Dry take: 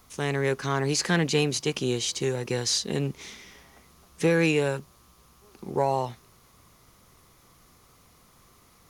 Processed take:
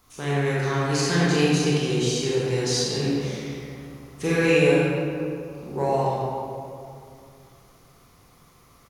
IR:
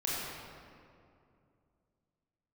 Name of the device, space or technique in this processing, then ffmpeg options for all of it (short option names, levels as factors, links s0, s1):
stairwell: -filter_complex "[0:a]asplit=3[s0][s1][s2];[s0]afade=t=out:st=2.98:d=0.02[s3];[s1]asplit=2[s4][s5];[s5]adelay=46,volume=0.708[s6];[s4][s6]amix=inputs=2:normalize=0,afade=t=in:st=2.98:d=0.02,afade=t=out:st=4.71:d=0.02[s7];[s2]afade=t=in:st=4.71:d=0.02[s8];[s3][s7][s8]amix=inputs=3:normalize=0[s9];[1:a]atrim=start_sample=2205[s10];[s9][s10]afir=irnorm=-1:irlink=0,volume=0.668"